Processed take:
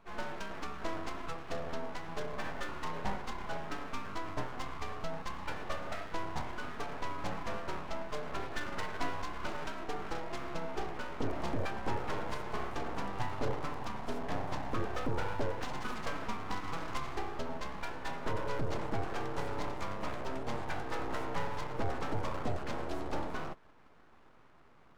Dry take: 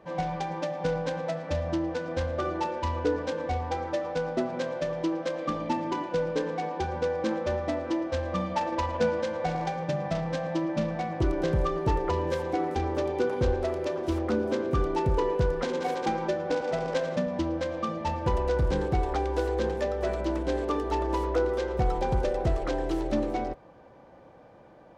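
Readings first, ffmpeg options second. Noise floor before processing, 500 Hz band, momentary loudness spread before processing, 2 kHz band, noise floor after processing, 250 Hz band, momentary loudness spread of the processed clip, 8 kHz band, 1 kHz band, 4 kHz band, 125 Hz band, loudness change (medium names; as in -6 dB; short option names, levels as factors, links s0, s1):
-52 dBFS, -13.5 dB, 4 LU, -3.5 dB, -58 dBFS, -11.5 dB, 4 LU, -4.5 dB, -7.5 dB, -4.5 dB, -11.0 dB, -10.5 dB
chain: -af "aeval=exprs='abs(val(0))':c=same,volume=0.501"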